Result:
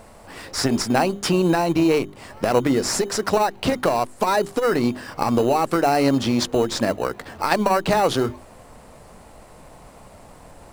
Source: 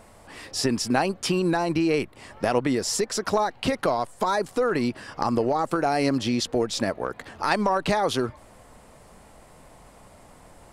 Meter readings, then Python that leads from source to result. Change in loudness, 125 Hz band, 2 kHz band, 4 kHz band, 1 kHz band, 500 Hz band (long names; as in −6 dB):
+4.0 dB, +4.5 dB, +2.5 dB, +3.0 dB, +4.0 dB, +4.5 dB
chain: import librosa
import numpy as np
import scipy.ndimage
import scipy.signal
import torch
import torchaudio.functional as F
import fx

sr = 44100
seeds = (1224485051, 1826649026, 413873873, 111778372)

p1 = fx.hum_notches(x, sr, base_hz=50, count=8)
p2 = fx.sample_hold(p1, sr, seeds[0], rate_hz=3400.0, jitter_pct=0)
p3 = p1 + F.gain(torch.from_numpy(p2), -7.5).numpy()
p4 = fx.transformer_sat(p3, sr, knee_hz=470.0)
y = F.gain(torch.from_numpy(p4), 3.0).numpy()